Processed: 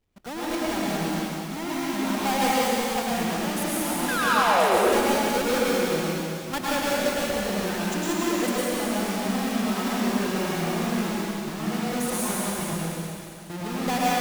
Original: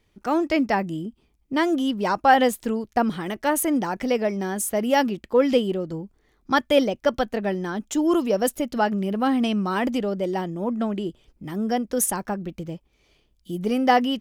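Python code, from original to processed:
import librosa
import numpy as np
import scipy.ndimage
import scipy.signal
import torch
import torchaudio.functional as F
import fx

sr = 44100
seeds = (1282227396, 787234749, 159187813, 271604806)

p1 = fx.halfwave_hold(x, sr)
p2 = fx.spec_paint(p1, sr, seeds[0], shape='fall', start_s=4.08, length_s=0.7, low_hz=330.0, high_hz=1700.0, level_db=-12.0)
p3 = fx.level_steps(p2, sr, step_db=14)
p4 = 10.0 ** (-20.5 / 20.0) * np.tanh(p3 / 10.0 ** (-20.5 / 20.0))
p5 = p4 + fx.echo_wet_highpass(p4, sr, ms=185, feedback_pct=56, hz=2700.0, wet_db=-6.0, dry=0)
p6 = fx.rev_plate(p5, sr, seeds[1], rt60_s=2.7, hf_ratio=0.95, predelay_ms=90, drr_db=-7.5)
y = F.gain(torch.from_numpy(p6), -5.5).numpy()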